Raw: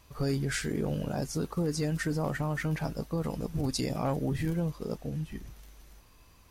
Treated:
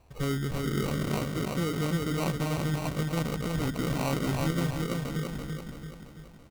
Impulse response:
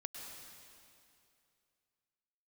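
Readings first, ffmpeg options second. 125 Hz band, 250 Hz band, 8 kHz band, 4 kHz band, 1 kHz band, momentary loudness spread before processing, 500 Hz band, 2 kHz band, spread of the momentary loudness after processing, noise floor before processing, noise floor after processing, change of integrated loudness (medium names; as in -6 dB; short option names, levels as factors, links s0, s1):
+2.0 dB, +2.0 dB, 0.0 dB, +3.5 dB, +3.5 dB, 6 LU, +1.0 dB, +1.5 dB, 10 LU, -58 dBFS, -50 dBFS, +2.0 dB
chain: -af "equalizer=f=5700:t=o:w=1.7:g=-12.5,aecho=1:1:335|670|1005|1340|1675|2010|2345:0.708|0.361|0.184|0.0939|0.0479|0.0244|0.0125,acrusher=samples=26:mix=1:aa=0.000001"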